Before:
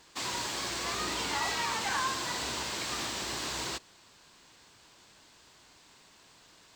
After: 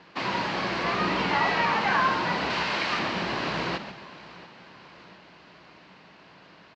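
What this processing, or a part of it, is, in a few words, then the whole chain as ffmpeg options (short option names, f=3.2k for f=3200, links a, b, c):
frequency-shifting delay pedal into a guitar cabinet: -filter_complex "[0:a]lowpass=f=7.6k:w=0.5412,lowpass=f=7.6k:w=1.3066,asettb=1/sr,asplit=3[a][b][c];[a]atrim=end=2.504[d];[b]atrim=start=2.5:end=2.99,asetpts=PTS-STARTPTS,afade=t=in:d=0.004:c=qsin,afade=t=out:st=0.486:d=0.004:c=qsin,tiltshelf=f=850:g=-4.5[e];[c]atrim=start=2.986[f];[d][e]acrossfade=d=0.004:c1=hsin:c2=qsin[g];[g][f]acrossfade=d=0.004:c1=qsin:c2=hsin,asplit=5[h][i][j][k][l];[i]adelay=136,afreqshift=-130,volume=-10.5dB[m];[j]adelay=272,afreqshift=-260,volume=-20.1dB[n];[k]adelay=408,afreqshift=-390,volume=-29.8dB[o];[l]adelay=544,afreqshift=-520,volume=-39.4dB[p];[h][m][n][o][p]amix=inputs=5:normalize=0,highpass=87,equalizer=f=87:t=q:w=4:g=-7,equalizer=f=180:t=q:w=4:g=9,equalizer=f=600:t=q:w=4:g=3,equalizer=f=3.5k:t=q:w=4:g=-8,lowpass=f=3.7k:w=0.5412,lowpass=f=3.7k:w=1.3066,aecho=1:1:690|1380|2070|2760:0.106|0.0561|0.0298|0.0158,volume=8.5dB"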